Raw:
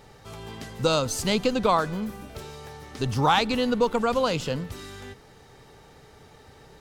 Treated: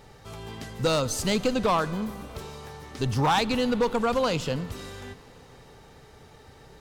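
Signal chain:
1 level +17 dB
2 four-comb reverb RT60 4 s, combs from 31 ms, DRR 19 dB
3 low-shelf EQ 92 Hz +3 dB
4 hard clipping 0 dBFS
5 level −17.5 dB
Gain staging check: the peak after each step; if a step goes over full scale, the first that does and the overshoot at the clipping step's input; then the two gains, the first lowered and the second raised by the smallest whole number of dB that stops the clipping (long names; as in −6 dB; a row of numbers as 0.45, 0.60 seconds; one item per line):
+8.5, +8.5, +8.5, 0.0, −17.5 dBFS
step 1, 8.5 dB
step 1 +8 dB, step 5 −8.5 dB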